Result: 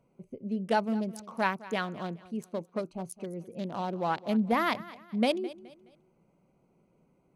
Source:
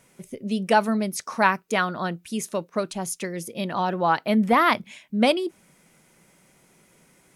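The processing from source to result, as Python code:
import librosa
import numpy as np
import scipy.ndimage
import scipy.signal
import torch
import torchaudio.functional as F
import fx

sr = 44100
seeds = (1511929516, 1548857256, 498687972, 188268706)

p1 = fx.wiener(x, sr, points=25)
p2 = fx.dynamic_eq(p1, sr, hz=1300.0, q=1.0, threshold_db=-33.0, ratio=4.0, max_db=-4)
p3 = p2 + fx.echo_feedback(p2, sr, ms=211, feedback_pct=35, wet_db=-18.0, dry=0)
y = F.gain(torch.from_numpy(p3), -6.0).numpy()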